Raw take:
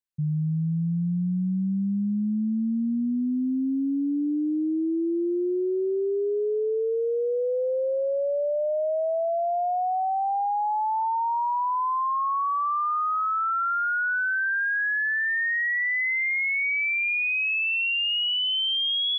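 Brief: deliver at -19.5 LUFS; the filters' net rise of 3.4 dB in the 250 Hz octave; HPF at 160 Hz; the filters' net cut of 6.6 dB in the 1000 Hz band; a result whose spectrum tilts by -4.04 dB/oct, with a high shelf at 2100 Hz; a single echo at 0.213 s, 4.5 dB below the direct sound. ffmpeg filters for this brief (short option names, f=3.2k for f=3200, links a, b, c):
-af "highpass=160,equalizer=f=250:t=o:g=6,equalizer=f=1k:t=o:g=-8,highshelf=f=2.1k:g=-5,aecho=1:1:213:0.596,volume=5dB"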